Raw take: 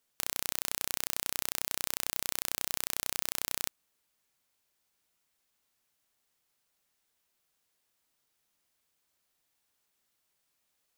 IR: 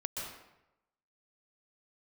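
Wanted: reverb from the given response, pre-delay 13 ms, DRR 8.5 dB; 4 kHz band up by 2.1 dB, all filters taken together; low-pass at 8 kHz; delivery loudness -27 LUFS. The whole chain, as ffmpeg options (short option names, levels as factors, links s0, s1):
-filter_complex "[0:a]lowpass=8000,equalizer=f=4000:t=o:g=3,asplit=2[s0][s1];[1:a]atrim=start_sample=2205,adelay=13[s2];[s1][s2]afir=irnorm=-1:irlink=0,volume=0.299[s3];[s0][s3]amix=inputs=2:normalize=0,volume=2.82"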